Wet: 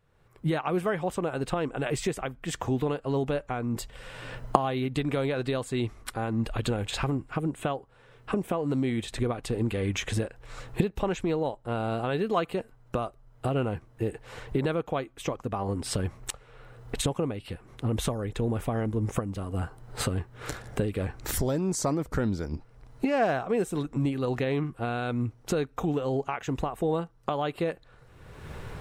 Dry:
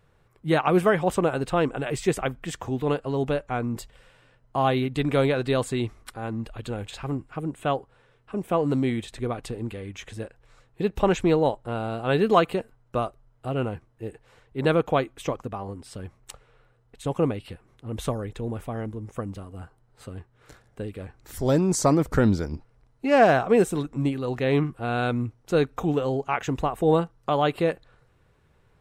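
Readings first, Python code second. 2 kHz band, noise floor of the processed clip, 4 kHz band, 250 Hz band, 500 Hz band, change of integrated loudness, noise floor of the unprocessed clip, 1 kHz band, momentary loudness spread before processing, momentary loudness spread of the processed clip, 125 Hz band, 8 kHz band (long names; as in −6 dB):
−5.0 dB, −57 dBFS, −1.5 dB, −3.5 dB, −5.5 dB, −5.0 dB, −62 dBFS, −5.0 dB, 17 LU, 9 LU, −2.0 dB, +0.5 dB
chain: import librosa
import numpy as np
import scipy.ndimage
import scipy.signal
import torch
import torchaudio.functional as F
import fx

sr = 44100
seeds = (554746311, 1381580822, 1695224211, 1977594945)

y = fx.recorder_agc(x, sr, target_db=-12.0, rise_db_per_s=34.0, max_gain_db=30)
y = y * 10.0 ** (-8.0 / 20.0)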